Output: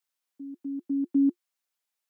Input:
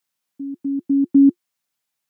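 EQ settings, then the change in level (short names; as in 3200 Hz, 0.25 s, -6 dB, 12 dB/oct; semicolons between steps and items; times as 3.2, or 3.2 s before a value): HPF 320 Hz 12 dB/oct; -6.0 dB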